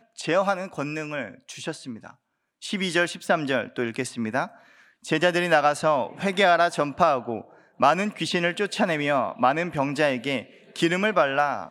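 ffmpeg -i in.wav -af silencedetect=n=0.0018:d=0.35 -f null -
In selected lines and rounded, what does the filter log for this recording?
silence_start: 2.15
silence_end: 2.62 | silence_duration: 0.46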